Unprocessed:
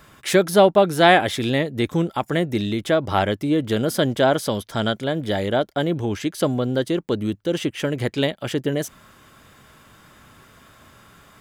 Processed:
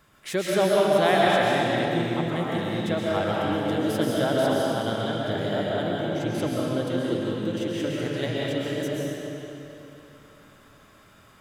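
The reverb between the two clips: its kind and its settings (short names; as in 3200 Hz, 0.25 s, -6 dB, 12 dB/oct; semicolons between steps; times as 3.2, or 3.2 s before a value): digital reverb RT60 3.2 s, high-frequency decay 0.85×, pre-delay 90 ms, DRR -5.5 dB; gain -10.5 dB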